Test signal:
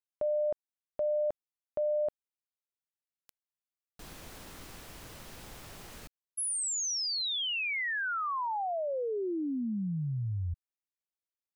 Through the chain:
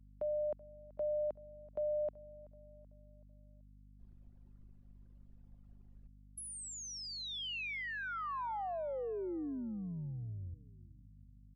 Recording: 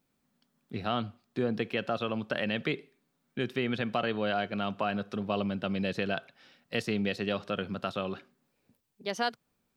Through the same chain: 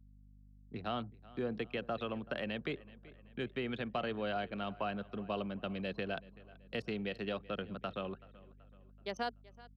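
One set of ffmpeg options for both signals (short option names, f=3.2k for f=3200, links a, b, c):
-filter_complex "[0:a]anlmdn=0.631,asplit=2[a][b];[b]adelay=380,lowpass=f=4.2k:p=1,volume=-21dB,asplit=2[c][d];[d]adelay=380,lowpass=f=4.2k:p=1,volume=0.5,asplit=2[e][f];[f]adelay=380,lowpass=f=4.2k:p=1,volume=0.5,asplit=2[g][h];[h]adelay=380,lowpass=f=4.2k:p=1,volume=0.5[i];[c][e][g][i]amix=inputs=4:normalize=0[j];[a][j]amix=inputs=2:normalize=0,acrossover=split=110|300|1200|2800[k][l][m][n][o];[k]acompressor=threshold=-48dB:ratio=2.5[p];[l]acompressor=threshold=-38dB:ratio=2.5[q];[n]acompressor=threshold=-38dB:ratio=6[r];[o]acompressor=threshold=-40dB:ratio=5[s];[p][q][m][r][s]amix=inputs=5:normalize=0,aeval=exprs='val(0)+0.00251*(sin(2*PI*50*n/s)+sin(2*PI*2*50*n/s)/2+sin(2*PI*3*50*n/s)/3+sin(2*PI*4*50*n/s)/4+sin(2*PI*5*50*n/s)/5)':c=same,volume=-6dB"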